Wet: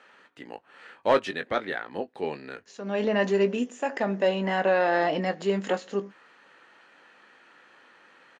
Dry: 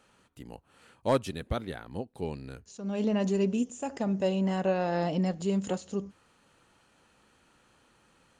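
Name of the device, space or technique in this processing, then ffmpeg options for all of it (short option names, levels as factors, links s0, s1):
intercom: -filter_complex "[0:a]highpass=350,lowpass=4000,equalizer=f=1800:t=o:w=0.56:g=9,asoftclip=type=tanh:threshold=0.133,asplit=2[s0][s1];[s1]adelay=20,volume=0.299[s2];[s0][s2]amix=inputs=2:normalize=0,volume=2.24"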